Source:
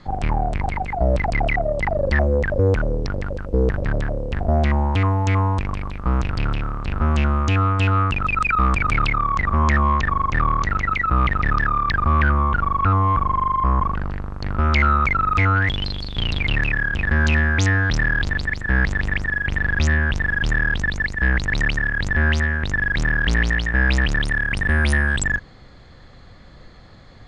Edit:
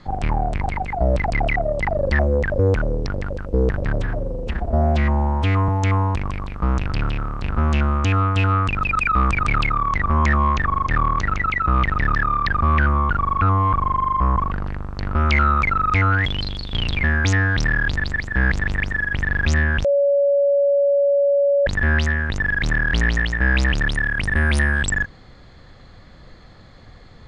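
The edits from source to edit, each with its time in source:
3.99–5.12 stretch 1.5×
16.47–17.37 cut
20.18–22 bleep 565 Hz -13.5 dBFS

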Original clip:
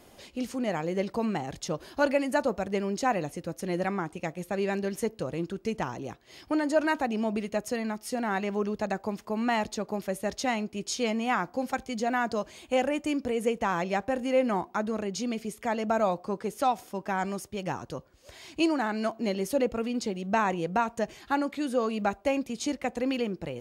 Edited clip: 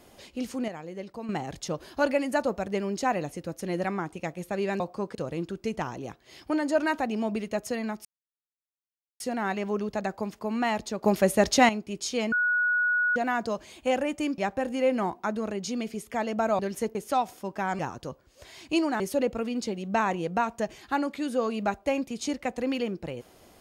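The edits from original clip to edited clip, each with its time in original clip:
0.68–1.29 gain -9 dB
4.8–5.16 swap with 16.1–16.45
8.06 insert silence 1.15 s
9.9–10.55 gain +9.5 dB
11.18–12.02 bleep 1460 Hz -21.5 dBFS
13.24–13.89 cut
17.29–17.66 cut
18.87–19.39 cut

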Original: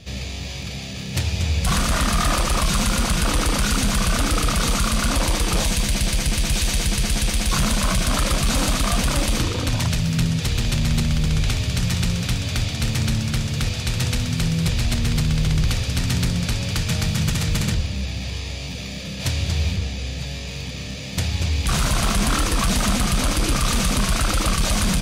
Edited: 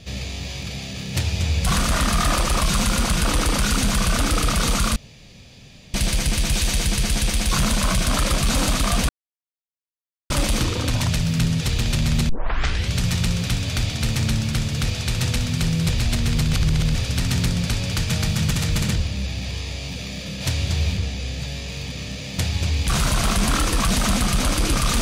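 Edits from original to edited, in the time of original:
4.96–5.94 room tone
9.09 insert silence 1.21 s
11.08 tape start 0.65 s
15.32–15.74 reverse

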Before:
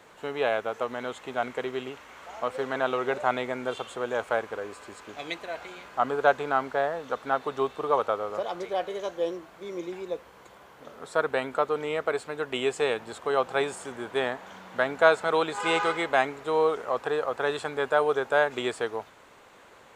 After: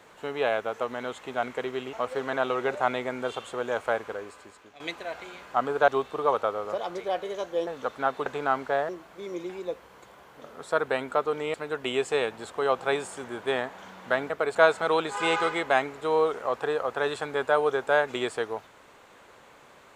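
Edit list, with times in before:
1.93–2.36 cut
4.49–5.23 fade out, to -15 dB
6.31–6.94 swap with 7.53–9.32
11.97–12.22 move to 14.98

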